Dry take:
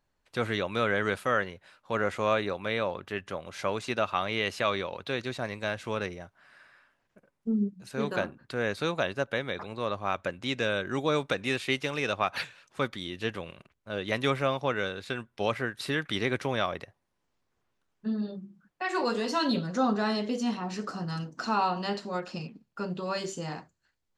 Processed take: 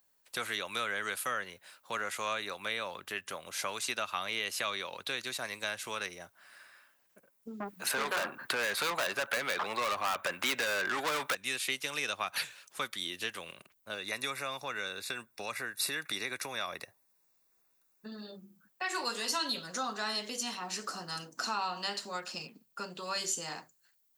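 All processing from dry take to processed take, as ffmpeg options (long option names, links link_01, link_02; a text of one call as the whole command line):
ffmpeg -i in.wav -filter_complex "[0:a]asettb=1/sr,asplit=3[link_01][link_02][link_03];[link_01]atrim=end=7.604[link_04];[link_02]atrim=start=7.6:end=11.35,asetpts=PTS-STARTPTS,afade=type=in:duration=0.004:curve=qsin,afade=type=out:start_time=3.746:duration=0.004:curve=qsin,equalizer=frequency=6000:width_type=o:width=2.5:gain=-12,acontrast=27,asplit=2[link_05][link_06];[link_06]highpass=frequency=720:poles=1,volume=27dB,asoftclip=type=tanh:threshold=-10dB[link_07];[link_05][link_07]amix=inputs=2:normalize=0,lowpass=frequency=2700:poles=1,volume=-6dB[link_08];[link_03]atrim=start=11.346[link_09];[link_04][link_08]acrossfade=duration=0.004:curve1=hsin:curve2=qsin[link_10];[link_10][link_09]acrossfade=duration=0.004:curve1=qsin:curve2=hsin,asettb=1/sr,asplit=3[link_11][link_12][link_13];[link_11]atrim=end=13.944[link_14];[link_12]atrim=start=13.94:end=18.12,asetpts=PTS-STARTPTS,afade=type=in:duration=0.004:curve=qsin,afade=type=out:start_time=4.176:duration=0.004:curve=qsin,acompressor=threshold=-33dB:ratio=1.5:attack=3.2:release=140:knee=1:detection=peak,asuperstop=centerf=3100:order=12:qfactor=6.6[link_15];[link_13]atrim=start=18.116[link_16];[link_14][link_15]acrossfade=duration=0.004:curve1=hsin:curve2=qsin[link_17];[link_17][link_16]acrossfade=duration=0.004:curve1=qsin:curve2=hsin,highshelf=frequency=8400:gain=6,acrossover=split=250|880[link_18][link_19][link_20];[link_18]acompressor=threshold=-46dB:ratio=4[link_21];[link_19]acompressor=threshold=-43dB:ratio=4[link_22];[link_20]acompressor=threshold=-32dB:ratio=4[link_23];[link_21][link_22][link_23]amix=inputs=3:normalize=0,aemphasis=mode=production:type=bsi,volume=-1dB" out.wav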